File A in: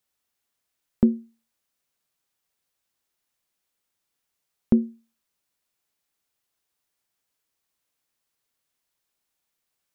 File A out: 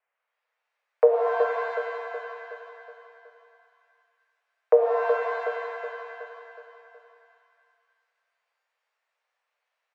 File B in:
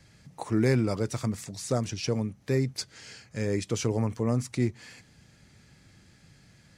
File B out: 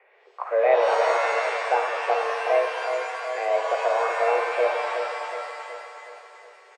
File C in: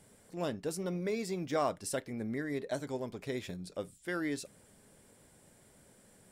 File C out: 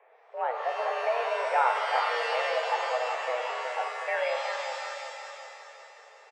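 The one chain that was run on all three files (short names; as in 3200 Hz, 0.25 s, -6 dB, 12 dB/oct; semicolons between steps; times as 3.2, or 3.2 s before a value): soft clip -8 dBFS; on a send: feedback echo 0.37 s, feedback 51%, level -7 dB; on the sum: mistuned SSB +240 Hz 240–2200 Hz; shimmer reverb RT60 1.8 s, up +7 st, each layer -2 dB, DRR 4.5 dB; gain +5.5 dB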